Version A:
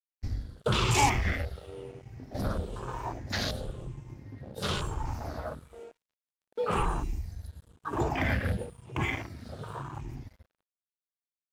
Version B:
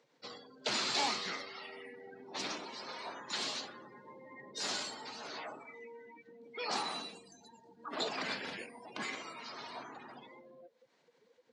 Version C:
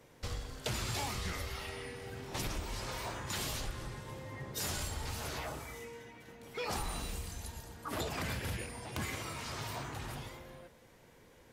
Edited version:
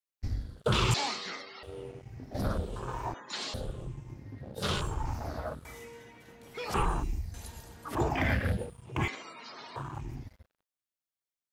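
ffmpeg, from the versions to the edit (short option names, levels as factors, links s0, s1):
-filter_complex "[1:a]asplit=3[s0][s1][s2];[2:a]asplit=2[s3][s4];[0:a]asplit=6[s5][s6][s7][s8][s9][s10];[s5]atrim=end=0.942[s11];[s0]atrim=start=0.938:end=1.632[s12];[s6]atrim=start=1.628:end=3.142[s13];[s1]atrim=start=3.138:end=3.542[s14];[s7]atrim=start=3.538:end=5.652[s15];[s3]atrim=start=5.648:end=6.742[s16];[s8]atrim=start=6.738:end=7.342[s17];[s4]atrim=start=7.338:end=7.952[s18];[s9]atrim=start=7.948:end=9.082[s19];[s2]atrim=start=9.078:end=9.762[s20];[s10]atrim=start=9.758[s21];[s11][s12]acrossfade=d=0.004:c1=hsin:c2=hsin[s22];[s22][s13]acrossfade=d=0.004:c1=hsin:c2=hsin[s23];[s23][s14]acrossfade=d=0.004:c1=hsin:c2=hsin[s24];[s24][s15]acrossfade=d=0.004:c1=hsin:c2=hsin[s25];[s25][s16]acrossfade=d=0.004:c1=hsin:c2=hsin[s26];[s26][s17]acrossfade=d=0.004:c1=hsin:c2=hsin[s27];[s27][s18]acrossfade=d=0.004:c1=hsin:c2=hsin[s28];[s28][s19]acrossfade=d=0.004:c1=hsin:c2=hsin[s29];[s29][s20]acrossfade=d=0.004:c1=hsin:c2=hsin[s30];[s30][s21]acrossfade=d=0.004:c1=hsin:c2=hsin"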